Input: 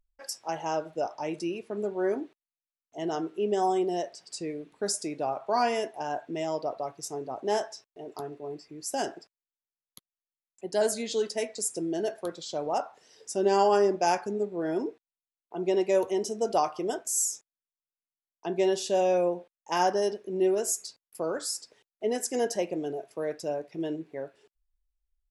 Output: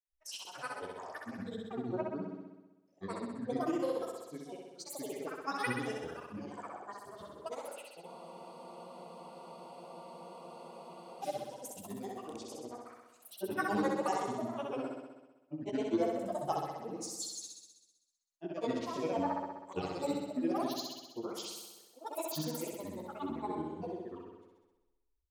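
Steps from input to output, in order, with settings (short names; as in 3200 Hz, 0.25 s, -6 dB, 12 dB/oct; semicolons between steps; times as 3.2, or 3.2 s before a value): grains 0.127 s, grains 7.8/s, spray 16 ms, pitch spread up and down by 0 st; chorus voices 2, 1.3 Hz, delay 25 ms, depth 3 ms; grains, pitch spread up and down by 12 st; on a send: flutter echo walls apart 11 m, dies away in 1.1 s; on the sum: spectral freeze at 8.08, 3.15 s; gain -3 dB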